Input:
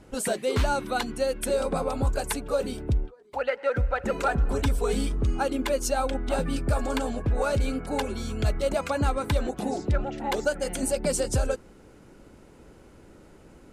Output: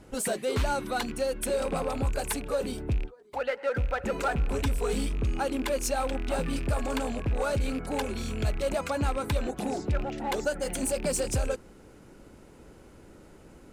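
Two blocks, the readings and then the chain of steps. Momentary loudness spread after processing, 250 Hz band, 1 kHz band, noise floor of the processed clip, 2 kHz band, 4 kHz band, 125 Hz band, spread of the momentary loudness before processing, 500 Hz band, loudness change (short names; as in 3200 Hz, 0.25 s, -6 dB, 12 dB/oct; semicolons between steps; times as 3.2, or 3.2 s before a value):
3 LU, -2.5 dB, -2.5 dB, -52 dBFS, -2.0 dB, -2.0 dB, -3.0 dB, 4 LU, -2.5 dB, -2.5 dB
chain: rattling part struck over -32 dBFS, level -30 dBFS; high shelf 10000 Hz +4 dB; in parallel at -3 dB: hard clip -30.5 dBFS, distortion -5 dB; on the sum: gain -5 dB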